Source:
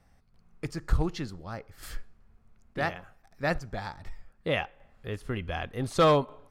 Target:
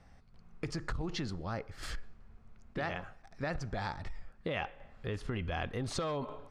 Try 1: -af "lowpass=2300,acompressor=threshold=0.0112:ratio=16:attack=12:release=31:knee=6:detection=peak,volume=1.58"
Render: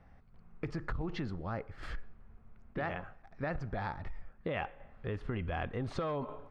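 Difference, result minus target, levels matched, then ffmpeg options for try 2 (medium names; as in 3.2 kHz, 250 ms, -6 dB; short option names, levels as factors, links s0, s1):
8 kHz band -15.0 dB
-af "lowpass=6400,acompressor=threshold=0.0112:ratio=16:attack=12:release=31:knee=6:detection=peak,volume=1.58"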